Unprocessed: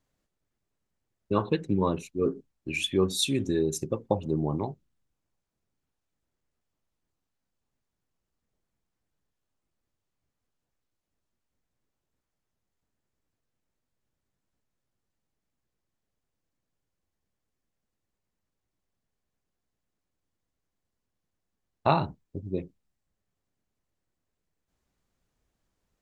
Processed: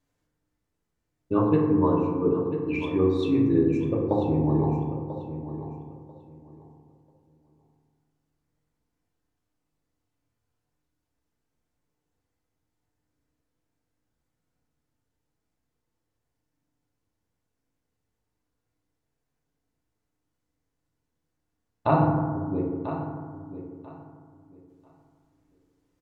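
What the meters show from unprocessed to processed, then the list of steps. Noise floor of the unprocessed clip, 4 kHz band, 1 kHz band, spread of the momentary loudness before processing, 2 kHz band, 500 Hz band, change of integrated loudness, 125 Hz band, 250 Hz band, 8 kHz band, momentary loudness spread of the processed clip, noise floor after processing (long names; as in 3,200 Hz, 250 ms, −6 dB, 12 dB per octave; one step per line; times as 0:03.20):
−84 dBFS, below −10 dB, +3.0 dB, 10 LU, −2.0 dB, +4.0 dB, +3.5 dB, +6.5 dB, +7.5 dB, below −25 dB, 18 LU, −81 dBFS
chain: treble cut that deepens with the level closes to 1,700 Hz, closed at −27.5 dBFS
repeating echo 991 ms, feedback 20%, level −12 dB
feedback delay network reverb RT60 1.7 s, low-frequency decay 1.2×, high-frequency decay 0.3×, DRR −3 dB
level −2 dB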